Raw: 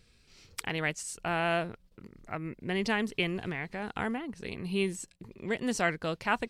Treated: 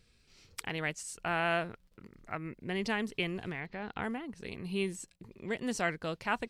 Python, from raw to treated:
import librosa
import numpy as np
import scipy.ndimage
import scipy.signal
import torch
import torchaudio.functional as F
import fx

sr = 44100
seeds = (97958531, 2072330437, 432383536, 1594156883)

y = fx.peak_eq(x, sr, hz=1600.0, db=4.0, octaves=1.7, at=(1.16, 2.51))
y = fx.lowpass(y, sr, hz=4900.0, slope=24, at=(3.6, 4.02), fade=0.02)
y = fx.dmg_crackle(y, sr, seeds[0], per_s=10.0, level_db=-53.0)
y = y * librosa.db_to_amplitude(-3.5)